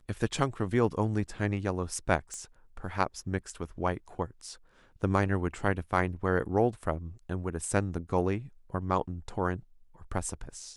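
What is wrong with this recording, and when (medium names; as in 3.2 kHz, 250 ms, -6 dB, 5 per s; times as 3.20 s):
2.34 s: pop -27 dBFS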